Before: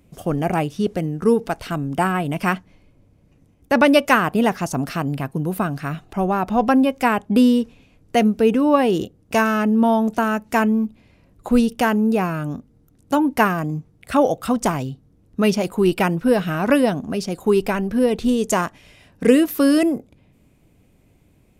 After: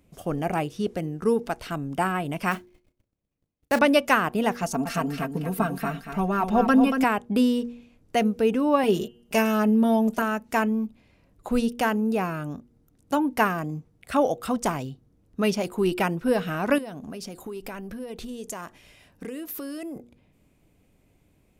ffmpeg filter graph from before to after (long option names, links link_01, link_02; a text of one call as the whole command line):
ffmpeg -i in.wav -filter_complex "[0:a]asettb=1/sr,asplit=3[link_01][link_02][link_03];[link_01]atrim=end=2.514[link_04];[link_02]atrim=start=2.51:end=3.79,asetpts=PTS-STARTPTS,afade=type=in:duration=0.004:curve=qsin,afade=type=out:start_time=1.276:duration=0.004:curve=qsin,agate=range=-22dB:threshold=-51dB:ratio=16:release=100:detection=peak,acrusher=bits=4:mode=log:mix=0:aa=0.000001,asplit=2[link_05][link_06];[link_06]adelay=34,volume=-13.5dB[link_07];[link_05][link_07]amix=inputs=2:normalize=0,atrim=end_sample=56448[link_08];[link_03]atrim=start=3.786[link_09];[link_04][link_08]acrossfade=duration=0.004:curve1=hsin:curve2=qsin[link_10];[link_10][link_09]acrossfade=duration=0.004:curve1=qsin:curve2=hsin,asettb=1/sr,asplit=3[link_11][link_12][link_13];[link_11]atrim=end=4.624[link_14];[link_12]atrim=start=4.62:end=7.04,asetpts=PTS-STARTPTS,afade=type=in:duration=0.004:curve=qsin,afade=type=out:start_time=2.416:duration=0.004:curve=qsin,aecho=1:1:4.4:0.79,atrim=end_sample=106722,aecho=1:1:233|466|699:0.447|0.067|0.0101,atrim=end_sample=106722[link_15];[link_13]atrim=start=7.036[link_16];[link_14][link_15]acrossfade=duration=0.004:curve1=hsin:curve2=qsin[link_17];[link_17][link_16]acrossfade=duration=0.004:curve1=qsin:curve2=hsin,asettb=1/sr,asplit=3[link_18][link_19][link_20];[link_18]atrim=end=8.834[link_21];[link_19]atrim=start=8.83:end=10.22,asetpts=PTS-STARTPTS,afade=type=in:duration=0.004:curve=qsin,afade=type=out:start_time=1.386:duration=0.004:curve=qsin,equalizer=frequency=13000:width_type=o:width=0.83:gain=5,aecho=1:1:4.9:0.69,atrim=end_sample=61299,bandreject=frequency=234.5:width_type=h:width=4,bandreject=frequency=469:width_type=h:width=4,bandreject=frequency=703.5:width_type=h:width=4,bandreject=frequency=938:width_type=h:width=4,bandreject=frequency=1172.5:width_type=h:width=4,bandreject=frequency=1407:width_type=h:width=4,bandreject=frequency=1641.5:width_type=h:width=4,bandreject=frequency=1876:width_type=h:width=4,bandreject=frequency=2110.5:width_type=h:width=4,bandreject=frequency=2345:width_type=h:width=4,bandreject=frequency=2579.5:width_type=h:width=4,bandreject=frequency=2814:width_type=h:width=4,bandreject=frequency=3048.5:width_type=h:width=4,bandreject=frequency=3283:width_type=h:width=4[link_22];[link_20]atrim=start=10.216[link_23];[link_21][link_22]acrossfade=duration=0.004:curve1=hsin:curve2=qsin[link_24];[link_24][link_23]acrossfade=duration=0.004:curve1=qsin:curve2=hsin,asettb=1/sr,asplit=3[link_25][link_26][link_27];[link_25]atrim=end=16.784[link_28];[link_26]atrim=start=16.78:end=19.96,asetpts=PTS-STARTPTS,afade=type=in:duration=0.004:curve=qsin,afade=type=out:start_time=3.176:duration=0.004:curve=qsin,highshelf=frequency=11000:gain=7.5,acompressor=threshold=-26dB:ratio=10:attack=3.2:release=140:knee=1:detection=peak[link_29];[link_27]atrim=start=19.956[link_30];[link_28][link_29]acrossfade=duration=0.004:curve1=hsin:curve2=qsin[link_31];[link_31][link_30]acrossfade=duration=0.004:curve1=qsin:curve2=hsin,equalizer=frequency=120:width=0.48:gain=-3,bandreject=frequency=119.5:width_type=h:width=4,bandreject=frequency=239:width_type=h:width=4,bandreject=frequency=358.5:width_type=h:width=4,bandreject=frequency=478:width_type=h:width=4,volume=-4.5dB" out.wav